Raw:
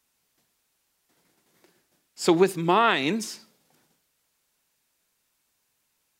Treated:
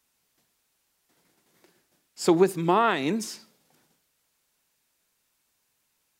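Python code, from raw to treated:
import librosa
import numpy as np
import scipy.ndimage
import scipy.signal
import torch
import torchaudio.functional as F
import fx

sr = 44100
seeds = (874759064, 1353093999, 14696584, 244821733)

y = fx.dynamic_eq(x, sr, hz=3100.0, q=0.72, threshold_db=-37.0, ratio=4.0, max_db=-7)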